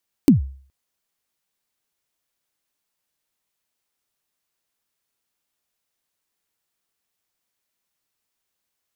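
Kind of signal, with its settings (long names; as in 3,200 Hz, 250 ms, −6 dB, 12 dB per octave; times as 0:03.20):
synth kick length 0.42 s, from 320 Hz, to 67 Hz, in 128 ms, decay 0.47 s, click on, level −5 dB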